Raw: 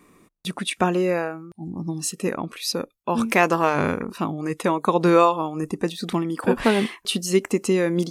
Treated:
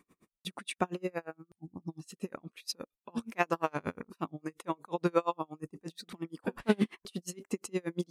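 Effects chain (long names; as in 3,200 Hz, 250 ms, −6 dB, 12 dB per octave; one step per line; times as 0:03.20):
0:06.69–0:07.11: low-shelf EQ 460 Hz +9 dB
tremolo with a sine in dB 8.5 Hz, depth 36 dB
level −7.5 dB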